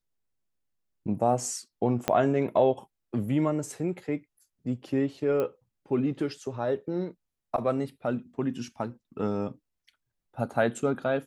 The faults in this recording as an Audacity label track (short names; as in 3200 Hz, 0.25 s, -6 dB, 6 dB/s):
2.080000	2.080000	pop -9 dBFS
5.400000	5.400000	pop -18 dBFS